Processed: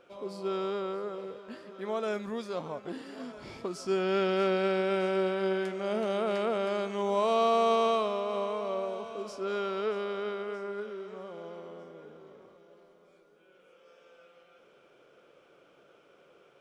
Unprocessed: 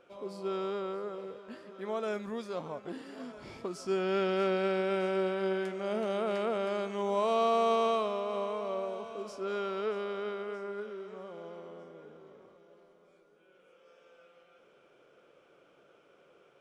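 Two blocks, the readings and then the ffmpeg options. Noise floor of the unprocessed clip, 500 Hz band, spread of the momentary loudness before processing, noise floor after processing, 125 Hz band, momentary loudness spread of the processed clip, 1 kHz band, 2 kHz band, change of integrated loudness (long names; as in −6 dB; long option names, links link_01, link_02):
−64 dBFS, +2.0 dB, 17 LU, −62 dBFS, can't be measured, 17 LU, +2.0 dB, +2.0 dB, +2.0 dB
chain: -af "equalizer=frequency=4300:width=1.5:gain=2,volume=2dB"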